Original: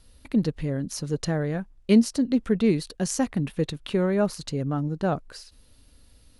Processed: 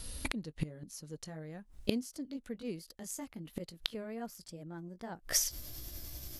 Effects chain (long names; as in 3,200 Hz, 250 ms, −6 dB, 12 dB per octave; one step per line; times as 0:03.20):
pitch glide at a constant tempo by +3.5 semitones starting unshifted
high-shelf EQ 4,800 Hz +9.5 dB
gate with flip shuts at −24 dBFS, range −27 dB
level +9 dB